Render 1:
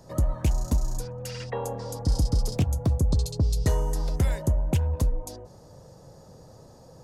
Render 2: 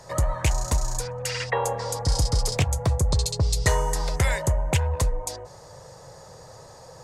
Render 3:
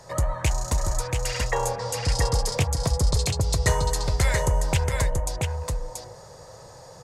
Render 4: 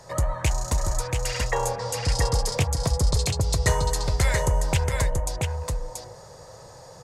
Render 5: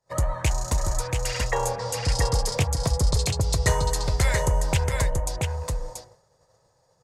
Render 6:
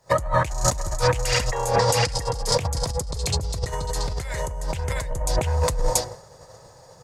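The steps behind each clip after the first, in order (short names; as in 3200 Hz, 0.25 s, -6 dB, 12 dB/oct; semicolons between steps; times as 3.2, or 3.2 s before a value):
graphic EQ 125/250/500/1000/2000/4000/8000 Hz +3/-9/+5/+7/+12/+5/+10 dB
echo 0.682 s -4 dB; gain -1 dB
nothing audible
expander -32 dBFS
negative-ratio compressor -33 dBFS, ratio -1; gain +8.5 dB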